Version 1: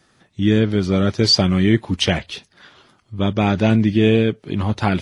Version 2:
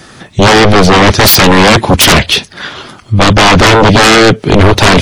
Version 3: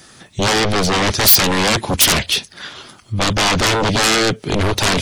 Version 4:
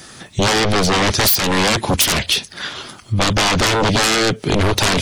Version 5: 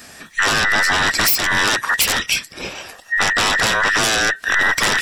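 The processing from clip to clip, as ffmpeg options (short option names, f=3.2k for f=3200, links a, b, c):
-af "aeval=exprs='0.794*sin(PI/2*8.91*val(0)/0.794)':c=same,volume=1dB"
-af "highshelf=f=4.2k:g=11,volume=-12.5dB"
-af "acompressor=threshold=-19dB:ratio=4,volume=5dB"
-af "afftfilt=real='real(if(between(b,1,1012),(2*floor((b-1)/92)+1)*92-b,b),0)':imag='imag(if(between(b,1,1012),(2*floor((b-1)/92)+1)*92-b,b),0)*if(between(b,1,1012),-1,1)':win_size=2048:overlap=0.75,volume=-1.5dB"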